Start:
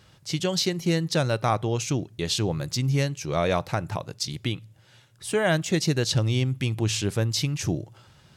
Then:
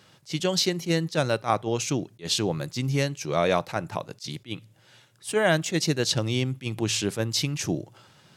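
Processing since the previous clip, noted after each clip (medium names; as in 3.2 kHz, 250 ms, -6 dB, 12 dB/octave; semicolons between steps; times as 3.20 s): high-pass 160 Hz 12 dB/octave; attacks held to a fixed rise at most 310 dB/s; trim +1.5 dB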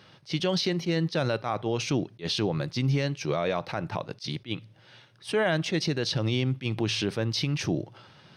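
peak limiter -19 dBFS, peak gain reduction 10.5 dB; Savitzky-Golay filter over 15 samples; trim +2.5 dB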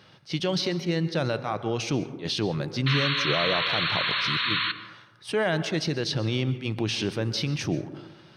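painted sound noise, 2.86–4.72 s, 970–4400 Hz -27 dBFS; plate-style reverb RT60 1 s, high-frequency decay 0.3×, pre-delay 115 ms, DRR 12.5 dB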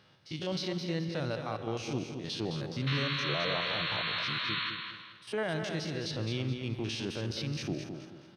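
spectrogram pixelated in time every 50 ms; feedback delay 213 ms, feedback 34%, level -7 dB; trim -7 dB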